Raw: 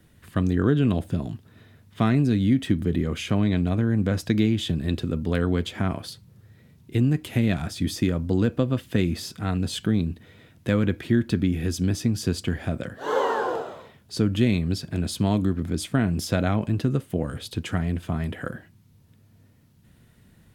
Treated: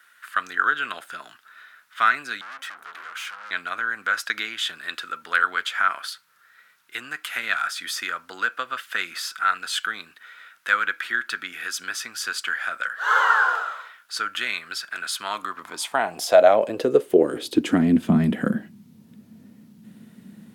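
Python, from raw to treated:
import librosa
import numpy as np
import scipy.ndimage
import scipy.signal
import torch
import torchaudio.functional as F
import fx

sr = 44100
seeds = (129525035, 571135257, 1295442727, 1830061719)

y = fx.tube_stage(x, sr, drive_db=37.0, bias=0.65, at=(2.41, 3.51))
y = fx.filter_sweep_highpass(y, sr, from_hz=1400.0, to_hz=210.0, start_s=15.19, end_s=18.13, q=5.4)
y = F.gain(torch.from_numpy(y), 4.0).numpy()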